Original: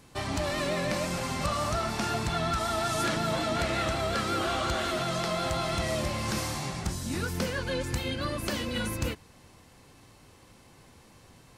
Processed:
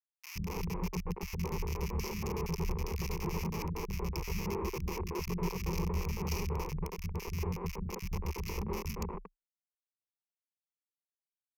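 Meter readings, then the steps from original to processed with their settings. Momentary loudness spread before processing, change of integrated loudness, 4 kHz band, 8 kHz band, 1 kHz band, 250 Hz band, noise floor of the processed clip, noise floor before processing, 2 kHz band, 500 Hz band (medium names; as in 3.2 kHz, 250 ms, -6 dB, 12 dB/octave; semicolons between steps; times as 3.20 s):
4 LU, -7.5 dB, -14.5 dB, -9.5 dB, -11.5 dB, -5.5 dB, under -85 dBFS, -56 dBFS, -12.5 dB, -9.0 dB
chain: random holes in the spectrogram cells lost 56%; elliptic band-stop 400–4300 Hz, stop band 50 dB; on a send: feedback delay 132 ms, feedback 50%, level -15.5 dB; on the sum: Schmitt trigger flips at -35.5 dBFS; rippled EQ curve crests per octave 0.8, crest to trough 17 dB; three bands offset in time highs, lows, mids 120/230 ms, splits 230/1600 Hz; trim +3 dB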